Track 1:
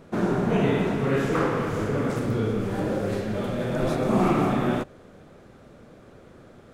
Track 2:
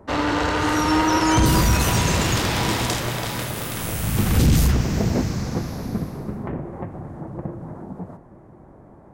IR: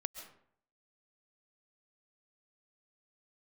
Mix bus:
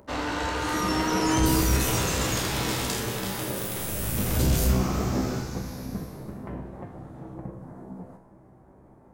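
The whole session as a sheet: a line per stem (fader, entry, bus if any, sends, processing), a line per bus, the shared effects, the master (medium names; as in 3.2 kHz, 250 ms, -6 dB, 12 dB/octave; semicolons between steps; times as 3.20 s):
-0.5 dB, 0.60 s, no send, none
+1.5 dB, 0.00 s, no send, treble shelf 6.7 kHz +8 dB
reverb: none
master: upward compressor, threshold -42 dBFS; feedback comb 64 Hz, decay 0.68 s, harmonics all, mix 80%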